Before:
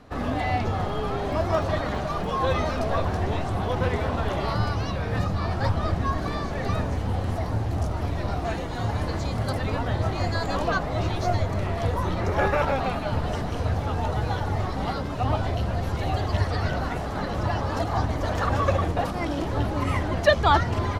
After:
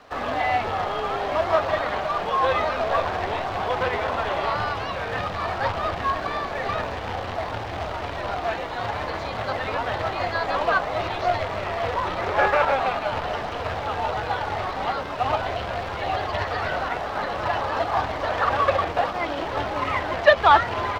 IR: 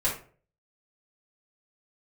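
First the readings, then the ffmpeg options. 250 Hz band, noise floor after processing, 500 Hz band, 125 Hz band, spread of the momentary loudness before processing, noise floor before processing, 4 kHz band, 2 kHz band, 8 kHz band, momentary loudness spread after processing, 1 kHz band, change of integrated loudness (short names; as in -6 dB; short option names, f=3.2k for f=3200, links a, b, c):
-6.5 dB, -31 dBFS, +3.0 dB, -10.5 dB, 5 LU, -30 dBFS, +3.0 dB, +5.5 dB, n/a, 8 LU, +5.0 dB, +1.5 dB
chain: -filter_complex "[0:a]acrusher=bits=3:mode=log:mix=0:aa=0.000001,acrossover=split=460 5600:gain=0.158 1 0.141[a][b][c];[a][b][c]amix=inputs=3:normalize=0,acrossover=split=3900[d][e];[e]acompressor=threshold=-57dB:ratio=4:attack=1:release=60[f];[d][f]amix=inputs=2:normalize=0,volume=5.5dB"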